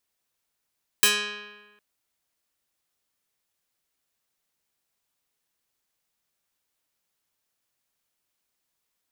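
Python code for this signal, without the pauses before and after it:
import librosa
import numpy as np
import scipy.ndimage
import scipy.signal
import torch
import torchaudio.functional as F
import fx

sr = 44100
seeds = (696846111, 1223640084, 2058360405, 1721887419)

y = fx.pluck(sr, length_s=0.76, note=56, decay_s=1.29, pick=0.3, brightness='medium')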